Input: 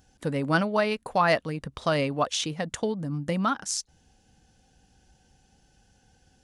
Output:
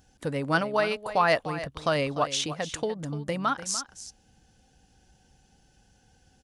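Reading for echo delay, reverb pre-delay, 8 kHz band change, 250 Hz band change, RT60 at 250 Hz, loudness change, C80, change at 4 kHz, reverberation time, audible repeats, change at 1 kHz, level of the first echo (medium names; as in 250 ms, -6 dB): 296 ms, no reverb, 0.0 dB, -4.0 dB, no reverb, -0.5 dB, no reverb, 0.0 dB, no reverb, 1, 0.0 dB, -13.0 dB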